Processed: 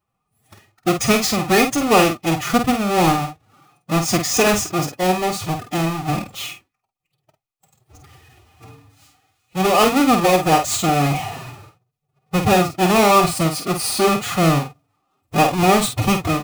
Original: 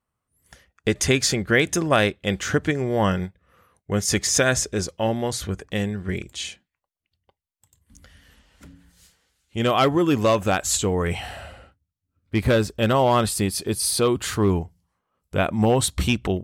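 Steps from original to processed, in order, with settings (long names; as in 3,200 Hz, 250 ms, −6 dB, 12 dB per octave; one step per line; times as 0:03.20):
each half-wave held at its own peak
phase-vocoder pitch shift with formants kept +8.5 semitones
notch filter 1,600 Hz, Q 8.8
double-tracking delay 49 ms −7 dB
hollow resonant body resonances 760/1,200/2,500 Hz, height 13 dB, ringing for 55 ms
level −1.5 dB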